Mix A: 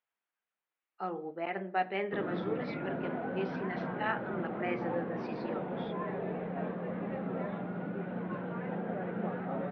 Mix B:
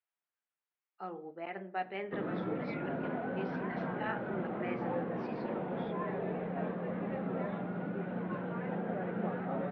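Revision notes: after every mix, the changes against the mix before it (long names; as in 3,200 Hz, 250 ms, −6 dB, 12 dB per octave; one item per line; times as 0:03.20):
speech −5.5 dB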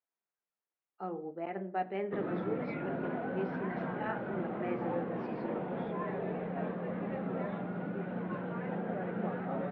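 speech: add tilt shelving filter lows +6.5 dB, about 1,100 Hz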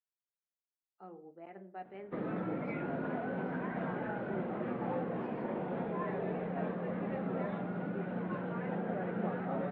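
speech −11.5 dB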